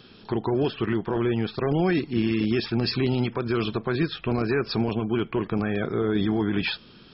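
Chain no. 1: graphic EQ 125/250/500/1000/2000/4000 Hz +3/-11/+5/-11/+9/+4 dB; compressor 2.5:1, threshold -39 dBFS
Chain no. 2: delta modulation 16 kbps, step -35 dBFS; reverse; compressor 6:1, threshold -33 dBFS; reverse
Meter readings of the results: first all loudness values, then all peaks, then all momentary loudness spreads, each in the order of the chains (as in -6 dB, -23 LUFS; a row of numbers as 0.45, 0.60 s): -37.0, -37.0 LUFS; -23.0, -22.5 dBFS; 3, 2 LU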